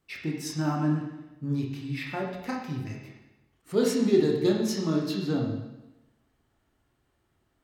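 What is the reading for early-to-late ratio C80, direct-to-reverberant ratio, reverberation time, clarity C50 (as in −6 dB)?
5.5 dB, −1.0 dB, 1.0 s, 3.0 dB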